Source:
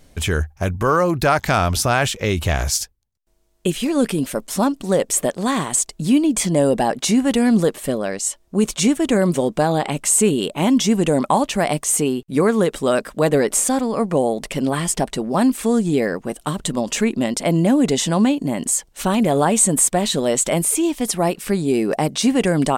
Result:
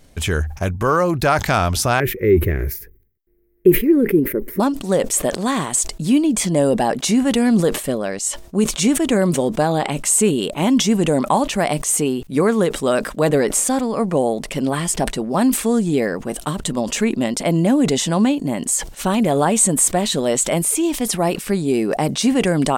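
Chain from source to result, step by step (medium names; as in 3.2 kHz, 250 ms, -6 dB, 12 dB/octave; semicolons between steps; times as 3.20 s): 2.00–4.60 s: FFT filter 260 Hz 0 dB, 380 Hz +13 dB, 730 Hz -20 dB, 1.2 kHz -14 dB, 2 kHz 0 dB, 3.1 kHz -23 dB, 8 kHz -27 dB, 15 kHz +8 dB; decay stretcher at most 110 dB/s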